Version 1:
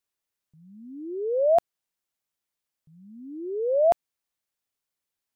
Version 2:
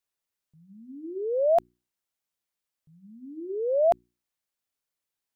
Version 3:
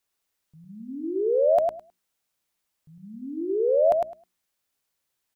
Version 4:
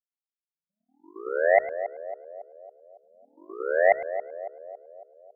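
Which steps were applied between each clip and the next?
hum notches 60/120/180/240/300/360 Hz; trim -1.5 dB
compression 2:1, threshold -30 dBFS, peak gain reduction 7 dB; feedback delay 105 ms, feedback 15%, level -4 dB; trim +6.5 dB
power-law waveshaper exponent 3; band-passed feedback delay 277 ms, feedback 57%, band-pass 510 Hz, level -11 dB; trim +6 dB

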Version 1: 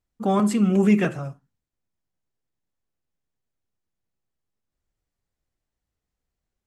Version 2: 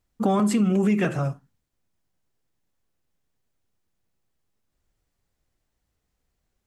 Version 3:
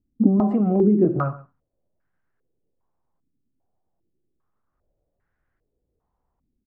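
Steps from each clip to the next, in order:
in parallel at +1.5 dB: peak limiter -15.5 dBFS, peak gain reduction 7 dB; on the sum: compression 6:1, threshold -18 dBFS, peak gain reduction 9.5 dB
delay 134 ms -19 dB; step-sequenced low-pass 2.5 Hz 270–1600 Hz

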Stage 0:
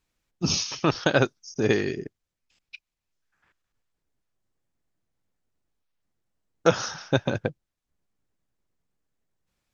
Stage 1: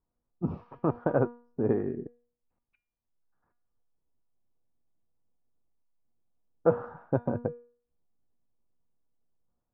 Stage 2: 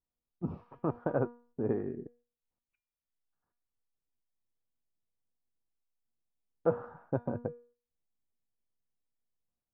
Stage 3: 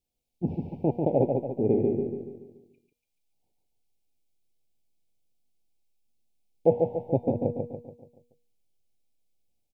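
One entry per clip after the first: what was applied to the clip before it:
low-pass 1.1 kHz 24 dB/octave; feedback comb 240 Hz, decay 0.44 s, harmonics all, mix 70%; trim +5.5 dB
gate -57 dBFS, range -6 dB; trim -5 dB
Chebyshev band-stop 850–2200 Hz, order 4; on a send: feedback delay 143 ms, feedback 47%, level -4 dB; on the sum: trim +7.5 dB

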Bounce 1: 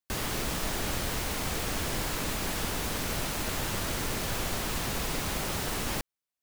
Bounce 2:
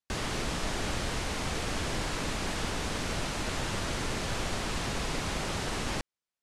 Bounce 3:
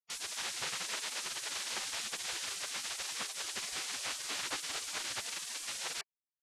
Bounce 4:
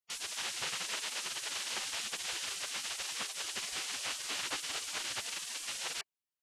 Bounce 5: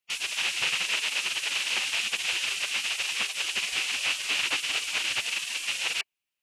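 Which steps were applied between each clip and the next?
Bessel low-pass 7.2 kHz, order 6
spectral gate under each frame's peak -20 dB weak; trim +2 dB
peaking EQ 2.9 kHz +3.5 dB 0.32 oct
peaking EQ 2.6 kHz +12.5 dB 0.65 oct; trim +4 dB

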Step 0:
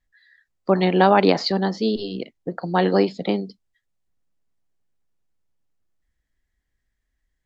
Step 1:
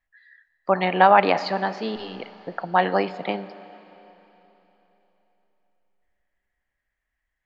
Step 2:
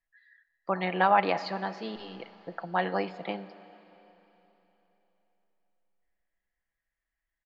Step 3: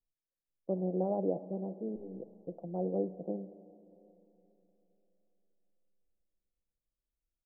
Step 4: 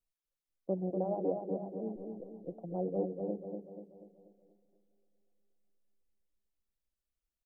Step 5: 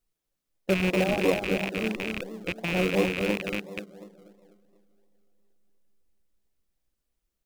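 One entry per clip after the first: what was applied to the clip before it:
high-order bell 1.3 kHz +11.5 dB 2.6 oct; Schroeder reverb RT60 3.6 s, combs from 29 ms, DRR 15 dB; trim -8.5 dB
comb 6 ms, depth 34%; trim -8 dB
steep low-pass 560 Hz 36 dB/octave
reverb removal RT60 1.4 s; on a send: feedback delay 242 ms, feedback 49%, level -5 dB
rattle on loud lows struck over -49 dBFS, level -26 dBFS; in parallel at -7 dB: decimation with a swept rate 40×, swing 60% 2.9 Hz; on the sum: trim +7 dB

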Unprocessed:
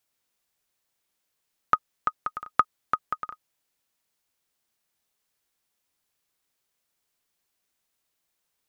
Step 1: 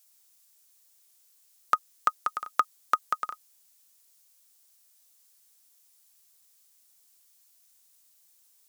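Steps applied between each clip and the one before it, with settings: peak limiter -10.5 dBFS, peak gain reduction 5.5 dB; tone controls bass -14 dB, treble +15 dB; trim +2 dB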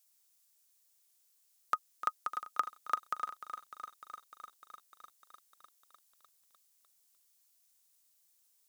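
bit-crushed delay 301 ms, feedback 80%, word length 8-bit, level -12 dB; trim -8 dB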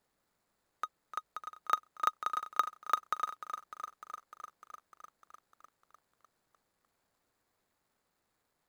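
median filter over 15 samples; reverse echo 898 ms -8.5 dB; trim +3.5 dB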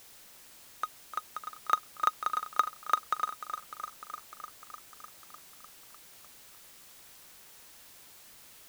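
added noise white -57 dBFS; trim +3 dB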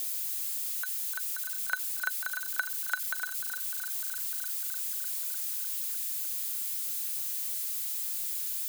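zero-crossing glitches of -25.5 dBFS; band-stop 5.4 kHz, Q 21; frequency shift +250 Hz; trim -5.5 dB

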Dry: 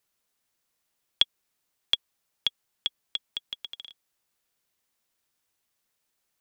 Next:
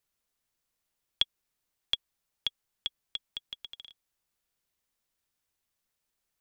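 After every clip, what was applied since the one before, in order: bass shelf 85 Hz +11 dB; trim -5 dB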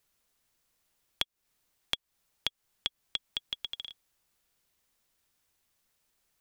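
compression, threshold -36 dBFS, peak gain reduction 15 dB; trim +7 dB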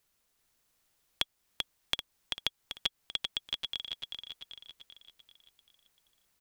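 feedback delay 389 ms, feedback 49%, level -4 dB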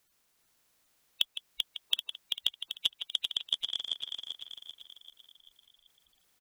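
coarse spectral quantiser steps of 30 dB; speakerphone echo 160 ms, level -7 dB; trim +3.5 dB

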